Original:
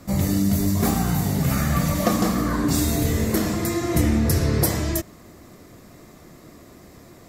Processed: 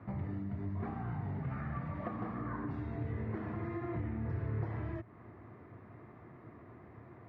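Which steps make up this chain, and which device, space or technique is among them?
bass amplifier (downward compressor 4 to 1, threshold −30 dBFS, peak gain reduction 13.5 dB; loudspeaker in its box 82–2,000 Hz, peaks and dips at 110 Hz +9 dB, 180 Hz −6 dB, 280 Hz −3 dB, 550 Hz −6 dB, 910 Hz +3 dB)
level −6 dB

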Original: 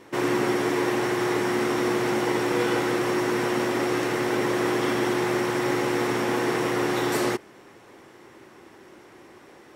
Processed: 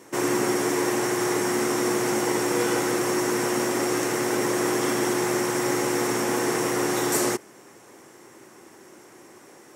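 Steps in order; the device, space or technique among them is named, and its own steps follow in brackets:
budget condenser microphone (high-pass filter 110 Hz; high shelf with overshoot 5,100 Hz +8.5 dB, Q 1.5)

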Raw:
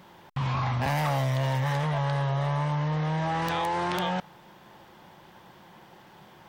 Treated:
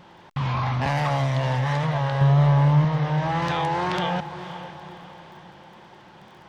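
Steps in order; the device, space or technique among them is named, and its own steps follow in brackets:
lo-fi chain (low-pass filter 6,300 Hz 12 dB per octave; tape wow and flutter; surface crackle 24 per second −48 dBFS)
0:02.21–0:02.85: low-shelf EQ 380 Hz +9 dB
feedback delay with all-pass diffusion 520 ms, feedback 45%, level −12 dB
level +3 dB

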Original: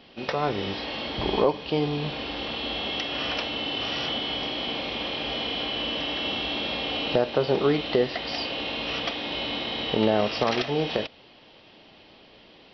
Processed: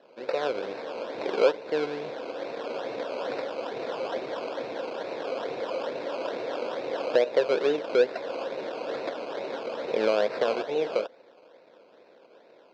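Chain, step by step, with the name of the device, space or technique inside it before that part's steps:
circuit-bent sampling toy (sample-and-hold swept by an LFO 19×, swing 60% 2.3 Hz; loudspeaker in its box 460–4,000 Hz, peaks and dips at 510 Hz +8 dB, 820 Hz −6 dB, 1,200 Hz −9 dB, 1,900 Hz −6 dB, 3,000 Hz −8 dB)

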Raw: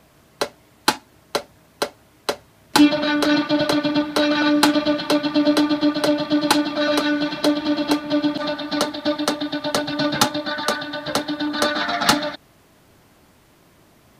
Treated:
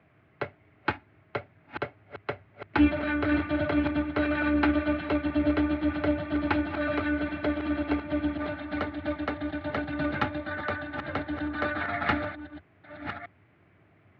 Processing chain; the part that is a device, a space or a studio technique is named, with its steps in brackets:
delay that plays each chunk backwards 663 ms, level −10 dB
sub-octave bass pedal (sub-octave generator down 2 octaves, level −5 dB; loudspeaker in its box 85–2,400 Hz, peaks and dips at 95 Hz +10 dB, 230 Hz −5 dB, 520 Hz −5 dB, 960 Hz −7 dB, 2,200 Hz +5 dB)
level −7 dB

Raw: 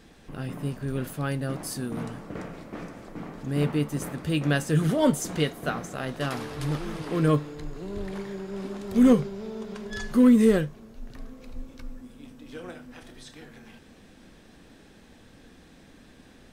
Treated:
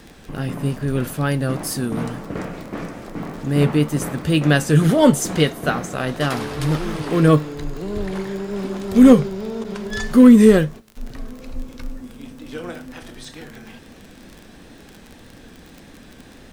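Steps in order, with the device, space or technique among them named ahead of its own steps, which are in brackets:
0:09.64–0:10.97: noise gate −41 dBFS, range −18 dB
vinyl LP (tape wow and flutter; surface crackle 28 per second −38 dBFS; pink noise bed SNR 42 dB)
level +8.5 dB

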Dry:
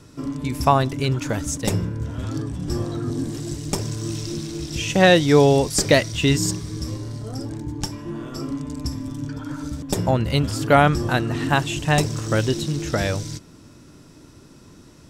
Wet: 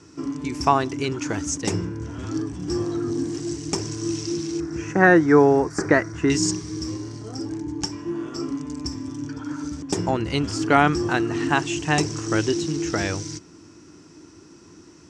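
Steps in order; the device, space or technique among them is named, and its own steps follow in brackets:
0:04.60–0:06.30: high shelf with overshoot 2,200 Hz −12.5 dB, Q 3
car door speaker (loudspeaker in its box 93–7,900 Hz, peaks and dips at 130 Hz −10 dB, 230 Hz −6 dB, 330 Hz +7 dB, 570 Hz −9 dB, 3,700 Hz −7 dB, 5,900 Hz +5 dB)

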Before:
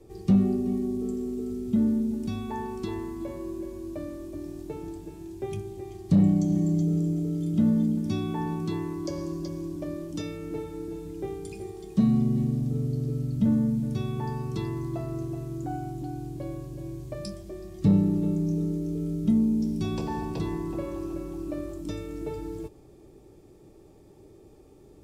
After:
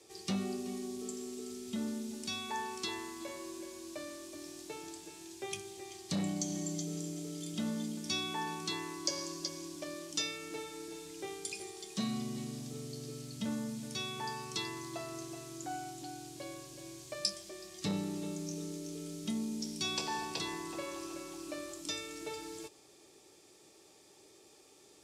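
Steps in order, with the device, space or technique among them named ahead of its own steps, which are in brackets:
piezo pickup straight into a mixer (low-pass filter 6,200 Hz 12 dB per octave; first difference)
level +15.5 dB

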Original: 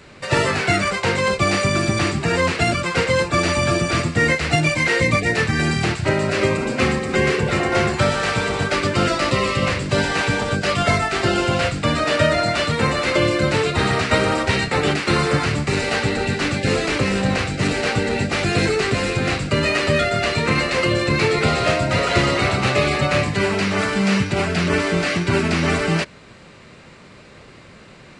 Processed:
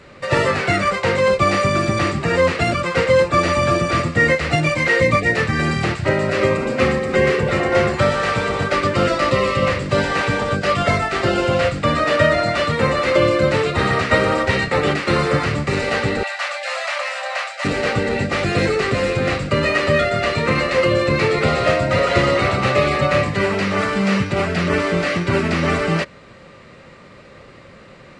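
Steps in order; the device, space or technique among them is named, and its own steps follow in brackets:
0:16.23–0:17.65: Butterworth high-pass 570 Hz 96 dB per octave
inside a helmet (high-shelf EQ 5,500 Hz −7.5 dB; hollow resonant body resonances 540/1,200/1,900 Hz, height 8 dB)

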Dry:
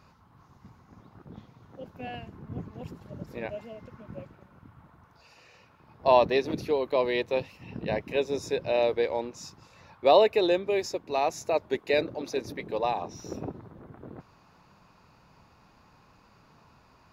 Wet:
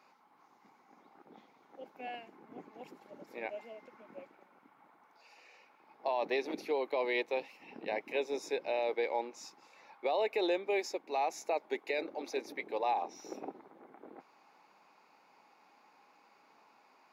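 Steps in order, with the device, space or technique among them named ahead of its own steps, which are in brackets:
laptop speaker (high-pass filter 270 Hz 24 dB per octave; parametric band 810 Hz +9 dB 0.22 octaves; parametric band 2,200 Hz +8.5 dB 0.27 octaves; brickwall limiter −17 dBFS, peak gain reduction 12 dB)
level −6 dB

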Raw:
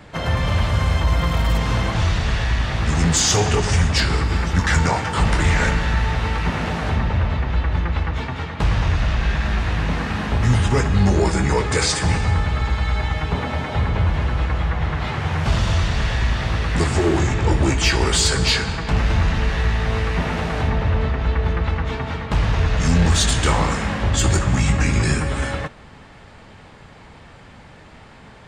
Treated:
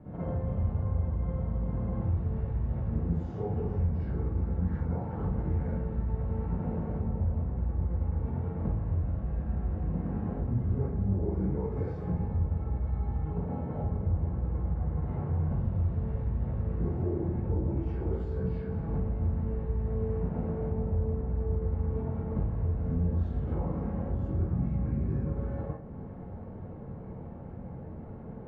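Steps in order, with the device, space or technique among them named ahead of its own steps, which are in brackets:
television next door (downward compressor 4 to 1, threshold −33 dBFS, peak gain reduction 17.5 dB; low-pass filter 490 Hz 12 dB per octave; convolution reverb RT60 0.50 s, pre-delay 45 ms, DRR −9 dB)
level −6 dB

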